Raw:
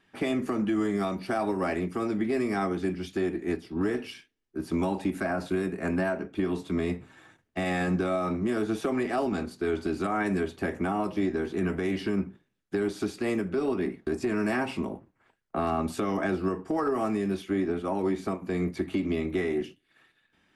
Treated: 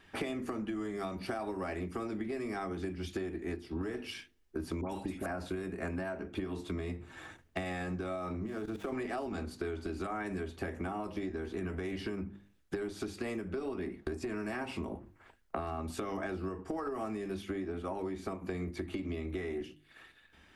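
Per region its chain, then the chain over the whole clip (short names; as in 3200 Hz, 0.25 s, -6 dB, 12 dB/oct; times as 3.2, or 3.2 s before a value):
4.81–5.26 high shelf 8300 Hz +8 dB + dispersion highs, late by 85 ms, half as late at 1600 Hz
8.46–8.93 median filter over 9 samples + level quantiser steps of 17 dB
whole clip: resonant low shelf 100 Hz +7.5 dB, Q 1.5; notches 50/100/150/200/250/300/350 Hz; compressor 12:1, threshold -40 dBFS; gain +6 dB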